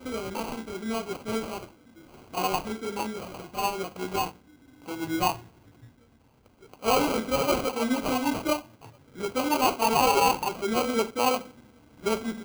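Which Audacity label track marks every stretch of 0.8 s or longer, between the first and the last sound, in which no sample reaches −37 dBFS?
5.370000	6.740000	silence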